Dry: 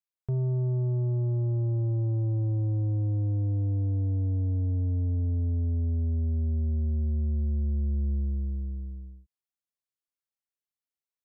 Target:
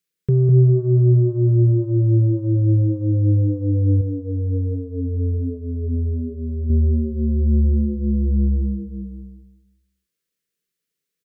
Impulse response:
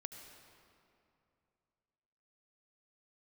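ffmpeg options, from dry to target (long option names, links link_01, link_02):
-filter_complex "[0:a]firequalizer=gain_entry='entry(110,0);entry(170,13);entry(240,4);entry(470,11);entry(720,-21);entry(1100,-3);entry(1700,5)':delay=0.05:min_phase=1,asplit=2[link_01][link_02];[link_02]adelay=203,lowpass=frequency=810:poles=1,volume=-4dB,asplit=2[link_03][link_04];[link_04]adelay=203,lowpass=frequency=810:poles=1,volume=0.28,asplit=2[link_05][link_06];[link_06]adelay=203,lowpass=frequency=810:poles=1,volume=0.28,asplit=2[link_07][link_08];[link_08]adelay=203,lowpass=frequency=810:poles=1,volume=0.28[link_09];[link_01][link_03][link_05][link_07][link_09]amix=inputs=5:normalize=0,asettb=1/sr,asplit=3[link_10][link_11][link_12];[link_10]atrim=end=4.014[link_13];[link_11]atrim=start=4.01:end=6.7,asetpts=PTS-STARTPTS,afade=type=in:duration=0.004:curve=qsin,afade=type=out:start_time=2.686:duration=0.004:curve=qsin,flanger=delay=5.8:depth=3.5:regen=61:speed=1.2:shape=sinusoidal[link_14];[link_12]atrim=start=6.696[link_15];[link_13][link_14]acrossfade=duration=0.004:curve1=hsin:curve2=qsin[link_16];[link_16][link_15]acrossfade=duration=0.004:curve1=qsin:curve2=hsin,volume=7dB"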